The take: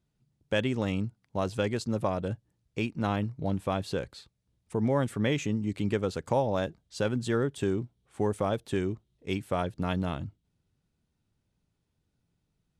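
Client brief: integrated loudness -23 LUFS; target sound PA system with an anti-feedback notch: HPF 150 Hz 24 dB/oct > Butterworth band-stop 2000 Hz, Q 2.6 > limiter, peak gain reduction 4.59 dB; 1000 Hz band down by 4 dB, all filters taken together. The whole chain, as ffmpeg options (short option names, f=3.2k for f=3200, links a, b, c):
-af "highpass=f=150:w=0.5412,highpass=f=150:w=1.3066,asuperstop=centerf=2000:order=8:qfactor=2.6,equalizer=f=1k:t=o:g=-5.5,volume=11dB,alimiter=limit=-9.5dB:level=0:latency=1"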